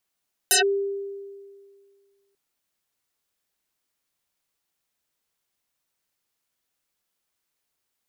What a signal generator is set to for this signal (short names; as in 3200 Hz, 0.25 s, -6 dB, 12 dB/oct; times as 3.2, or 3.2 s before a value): FM tone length 1.84 s, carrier 397 Hz, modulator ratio 2.84, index 12, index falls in 0.12 s linear, decay 1.97 s, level -14 dB